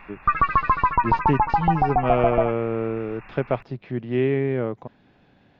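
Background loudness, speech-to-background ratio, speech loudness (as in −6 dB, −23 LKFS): −22.0 LKFS, −3.5 dB, −25.5 LKFS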